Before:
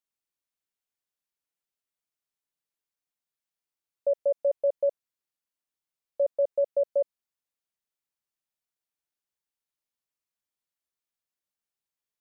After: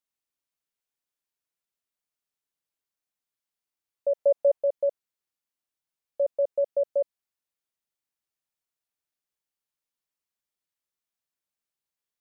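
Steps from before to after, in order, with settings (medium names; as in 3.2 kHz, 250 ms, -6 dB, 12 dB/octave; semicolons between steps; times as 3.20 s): 4.16–4.58 s: peaking EQ 770 Hz +5.5 dB 1.6 oct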